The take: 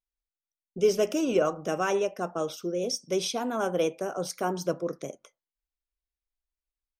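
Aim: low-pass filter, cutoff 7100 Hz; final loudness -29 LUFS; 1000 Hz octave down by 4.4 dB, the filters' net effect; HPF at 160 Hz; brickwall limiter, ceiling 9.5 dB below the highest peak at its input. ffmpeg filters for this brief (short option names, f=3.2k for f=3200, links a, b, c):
-af "highpass=160,lowpass=7.1k,equalizer=f=1k:t=o:g=-6.5,volume=4.5dB,alimiter=limit=-18.5dB:level=0:latency=1"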